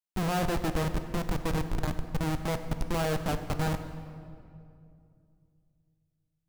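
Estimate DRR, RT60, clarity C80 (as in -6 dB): 8.5 dB, 2.5 s, 10.5 dB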